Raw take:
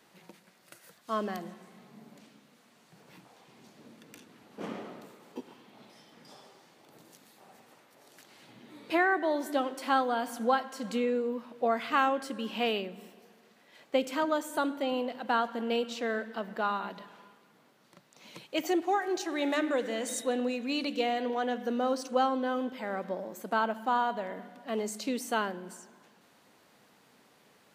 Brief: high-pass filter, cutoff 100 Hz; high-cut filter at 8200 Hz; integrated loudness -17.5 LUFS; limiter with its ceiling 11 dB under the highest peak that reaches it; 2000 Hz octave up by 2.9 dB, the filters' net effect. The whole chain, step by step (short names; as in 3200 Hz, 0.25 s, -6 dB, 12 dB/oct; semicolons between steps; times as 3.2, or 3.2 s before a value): HPF 100 Hz; LPF 8200 Hz; bell 2000 Hz +4 dB; gain +16 dB; limiter -6 dBFS